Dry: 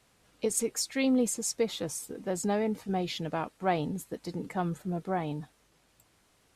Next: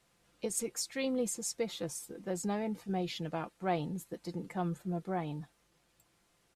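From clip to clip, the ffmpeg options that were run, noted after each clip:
-af "aecho=1:1:5.8:0.39,volume=-5.5dB"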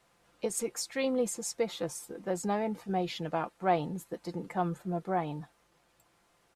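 -af "equalizer=f=900:w=0.55:g=7"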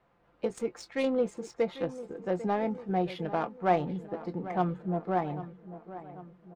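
-filter_complex "[0:a]adynamicsmooth=sensitivity=3.5:basefreq=1.9k,asplit=2[a][b];[b]adelay=22,volume=-13.5dB[c];[a][c]amix=inputs=2:normalize=0,asplit=2[d][e];[e]adelay=795,lowpass=f=2.4k:p=1,volume=-14dB,asplit=2[f][g];[g]adelay=795,lowpass=f=2.4k:p=1,volume=0.54,asplit=2[h][i];[i]adelay=795,lowpass=f=2.4k:p=1,volume=0.54,asplit=2[j][k];[k]adelay=795,lowpass=f=2.4k:p=1,volume=0.54,asplit=2[l][m];[m]adelay=795,lowpass=f=2.4k:p=1,volume=0.54[n];[d][f][h][j][l][n]amix=inputs=6:normalize=0,volume=2dB"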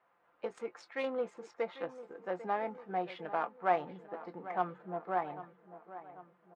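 -af "bandpass=f=1.3k:t=q:w=0.86:csg=0"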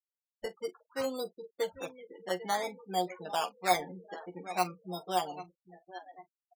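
-af "acrusher=samples=14:mix=1:aa=0.000001:lfo=1:lforange=8.4:lforate=0.55,afftfilt=real='re*gte(hypot(re,im),0.00891)':imag='im*gte(hypot(re,im),0.00891)':win_size=1024:overlap=0.75,aecho=1:1:11|44:0.631|0.133"

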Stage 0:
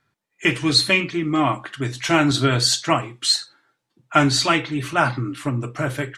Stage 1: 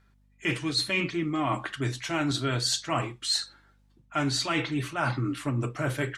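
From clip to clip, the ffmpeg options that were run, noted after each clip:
-af "areverse,acompressor=threshold=-25dB:ratio=6,areverse,aeval=exprs='val(0)+0.000794*(sin(2*PI*50*n/s)+sin(2*PI*2*50*n/s)/2+sin(2*PI*3*50*n/s)/3+sin(2*PI*4*50*n/s)/4+sin(2*PI*5*50*n/s)/5)':c=same"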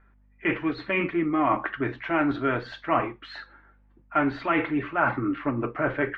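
-af "lowpass=f=2.1k:w=0.5412,lowpass=f=2.1k:w=1.3066,equalizer=f=130:w=1.6:g=-12.5,volume=6dB"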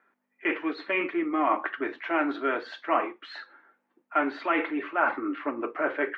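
-af "highpass=f=300:w=0.5412,highpass=f=300:w=1.3066,volume=-1dB"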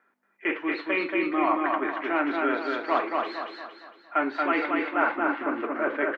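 -af "aecho=1:1:230|460|690|920|1150|1380:0.708|0.304|0.131|0.0563|0.0242|0.0104"

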